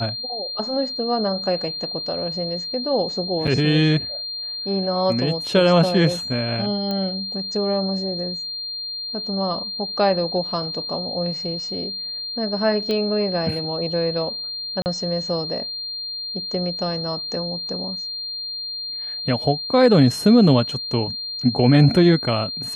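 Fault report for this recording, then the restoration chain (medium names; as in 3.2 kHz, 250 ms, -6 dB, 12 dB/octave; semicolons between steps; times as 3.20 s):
whine 4.2 kHz -27 dBFS
3.47–3.48 s: dropout 5.9 ms
6.91 s: pop -14 dBFS
12.91 s: pop -13 dBFS
14.82–14.86 s: dropout 39 ms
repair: de-click; band-stop 4.2 kHz, Q 30; interpolate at 3.47 s, 5.9 ms; interpolate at 14.82 s, 39 ms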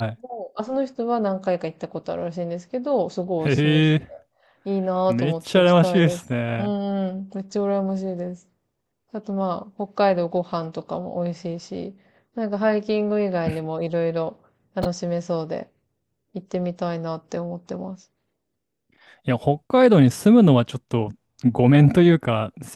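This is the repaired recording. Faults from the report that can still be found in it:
nothing left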